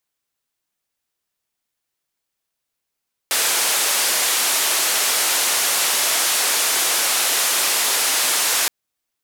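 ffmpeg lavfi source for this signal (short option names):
-f lavfi -i "anoisesrc=c=white:d=5.37:r=44100:seed=1,highpass=f=450,lowpass=f=12000,volume=-11.4dB"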